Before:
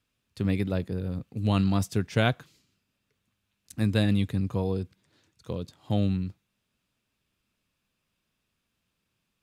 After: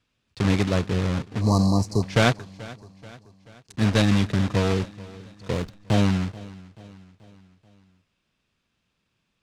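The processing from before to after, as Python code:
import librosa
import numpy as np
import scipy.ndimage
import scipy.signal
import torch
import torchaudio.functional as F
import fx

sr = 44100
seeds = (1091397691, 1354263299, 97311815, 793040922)

p1 = fx.block_float(x, sr, bits=3)
p2 = scipy.signal.sosfilt(scipy.signal.butter(2, 5900.0, 'lowpass', fs=sr, output='sos'), p1)
p3 = fx.rider(p2, sr, range_db=10, speed_s=0.5)
p4 = p2 + F.gain(torch.from_numpy(p3), -2.0).numpy()
p5 = fx.brickwall_bandstop(p4, sr, low_hz=1200.0, high_hz=3900.0, at=(1.41, 2.03))
p6 = fx.backlash(p5, sr, play_db=-35.5, at=(5.53, 5.94))
y = p6 + fx.echo_feedback(p6, sr, ms=433, feedback_pct=52, wet_db=-20, dry=0)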